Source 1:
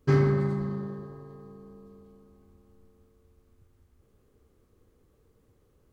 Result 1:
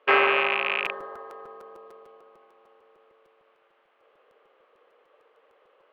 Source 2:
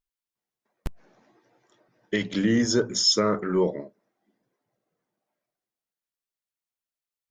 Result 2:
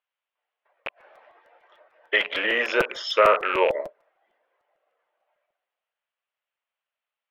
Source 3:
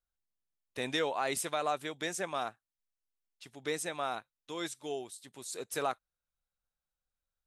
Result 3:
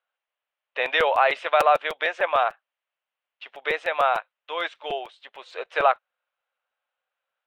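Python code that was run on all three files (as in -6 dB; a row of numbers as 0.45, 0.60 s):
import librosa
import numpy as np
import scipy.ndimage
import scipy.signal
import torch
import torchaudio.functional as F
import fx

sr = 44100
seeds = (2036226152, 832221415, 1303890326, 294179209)

y = fx.rattle_buzz(x, sr, strikes_db=-33.0, level_db=-26.0)
y = scipy.signal.sosfilt(scipy.signal.ellip(3, 1.0, 80, [550.0, 3000.0], 'bandpass', fs=sr, output='sos'), y)
y = fx.buffer_crackle(y, sr, first_s=0.85, period_s=0.15, block=256, kind='repeat')
y = librosa.util.normalize(y) * 10.0 ** (-6 / 20.0)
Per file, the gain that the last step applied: +15.0, +11.0, +15.0 dB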